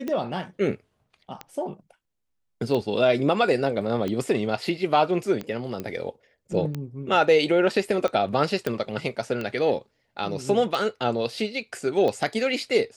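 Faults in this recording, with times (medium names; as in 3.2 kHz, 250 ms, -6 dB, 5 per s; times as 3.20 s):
tick 45 rpm -17 dBFS
5.80 s: pop -18 dBFS
8.67 s: pop -12 dBFS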